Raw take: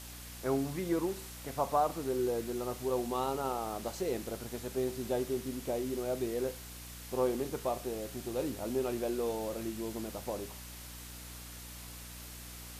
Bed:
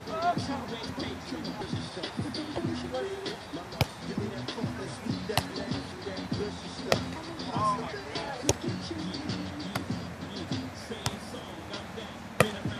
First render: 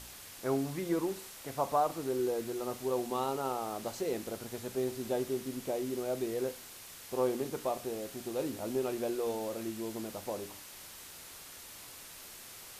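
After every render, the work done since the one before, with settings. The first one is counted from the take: de-hum 60 Hz, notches 5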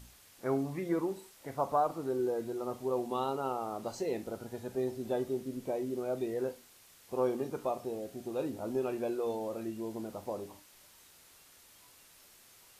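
noise print and reduce 10 dB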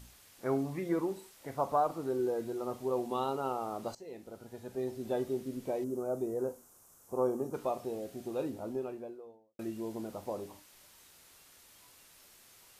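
3.95–5.19 s: fade in, from -16.5 dB; 5.84–7.54 s: high-order bell 2.9 kHz -15.5 dB; 8.25–9.59 s: studio fade out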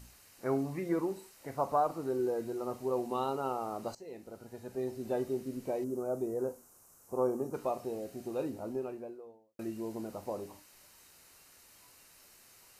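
band-stop 3.4 kHz, Q 6.7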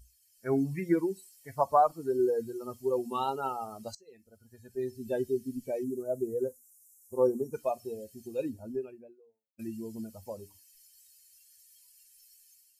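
expander on every frequency bin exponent 2; level rider gain up to 8 dB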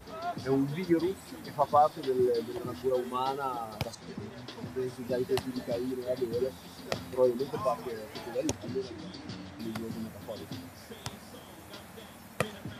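add bed -8 dB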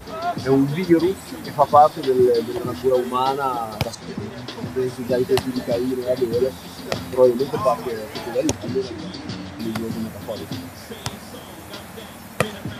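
trim +11 dB; peak limiter -1 dBFS, peak gain reduction 3 dB

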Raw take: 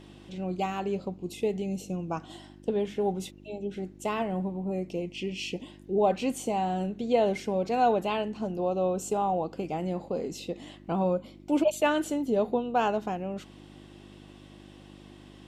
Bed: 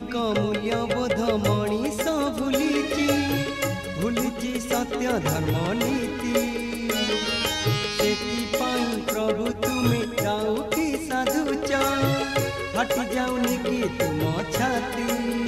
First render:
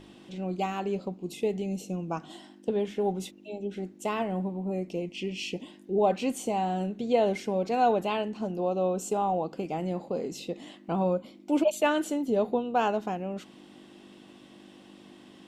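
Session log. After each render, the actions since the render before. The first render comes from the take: de-hum 50 Hz, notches 3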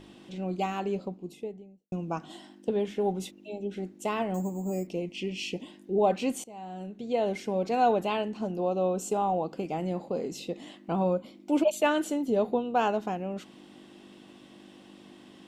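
0.81–1.92 s: studio fade out; 4.34–4.87 s: careless resampling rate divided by 6×, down filtered, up hold; 6.44–7.65 s: fade in, from -21.5 dB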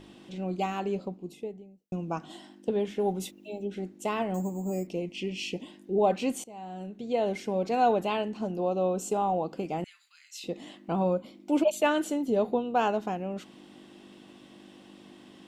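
2.99–3.66 s: treble shelf 11 kHz +11 dB; 9.84–10.44 s: steep high-pass 1.5 kHz 48 dB/octave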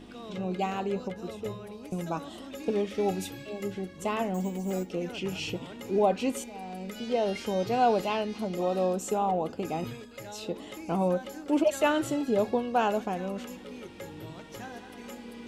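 add bed -18.5 dB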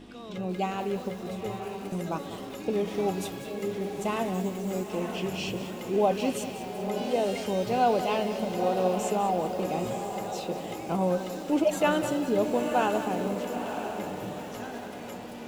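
on a send: echo that smears into a reverb 942 ms, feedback 45%, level -7 dB; on the sum: bit-crushed delay 194 ms, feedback 55%, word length 7-bit, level -11 dB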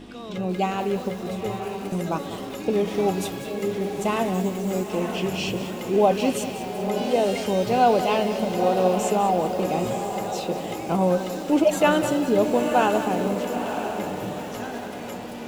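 trim +5.5 dB

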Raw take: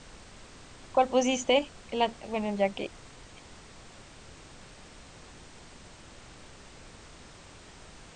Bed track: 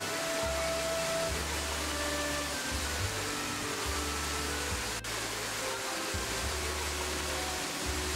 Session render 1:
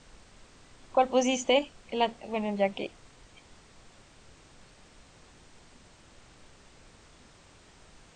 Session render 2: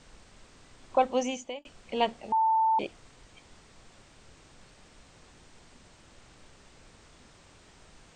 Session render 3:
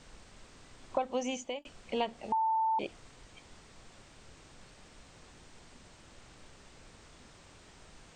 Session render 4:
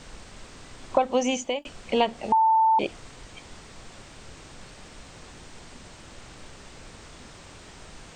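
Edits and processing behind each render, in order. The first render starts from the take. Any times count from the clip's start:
noise print and reduce 6 dB
0.97–1.65 s: fade out; 2.32–2.79 s: bleep 889 Hz -21 dBFS
compression 6:1, threshold -28 dBFS, peak gain reduction 10 dB
trim +10 dB

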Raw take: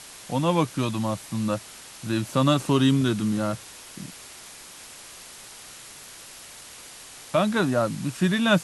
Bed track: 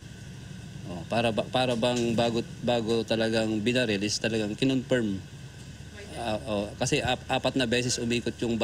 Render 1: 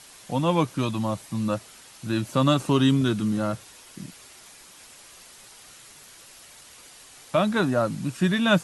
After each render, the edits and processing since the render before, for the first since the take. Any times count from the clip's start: noise reduction 6 dB, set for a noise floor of -44 dBFS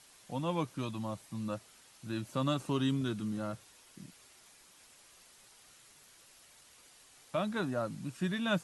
trim -11.5 dB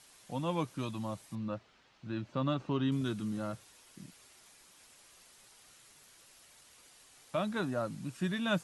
1.35–2.92 s: distance through air 200 m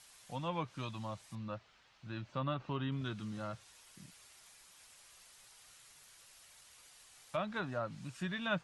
peaking EQ 290 Hz -9 dB 1.8 oct; low-pass that closes with the level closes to 2.9 kHz, closed at -33 dBFS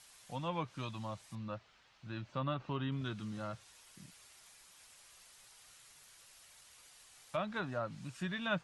no audible change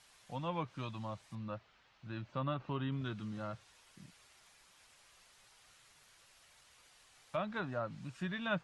low-pass 3.7 kHz 6 dB/octave

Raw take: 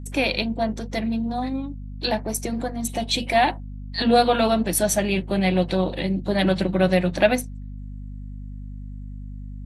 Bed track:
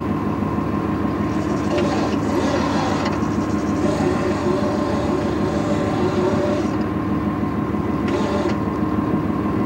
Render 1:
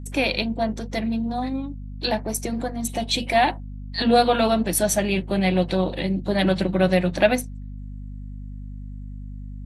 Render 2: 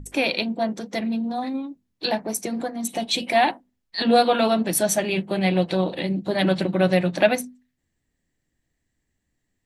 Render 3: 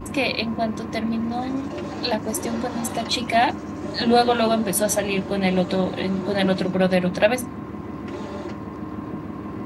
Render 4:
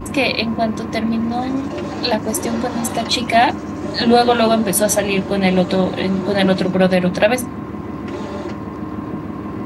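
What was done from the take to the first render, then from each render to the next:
no audible change
hum notches 50/100/150/200/250 Hz
add bed track -11.5 dB
trim +5.5 dB; peak limiter -2 dBFS, peak gain reduction 3 dB

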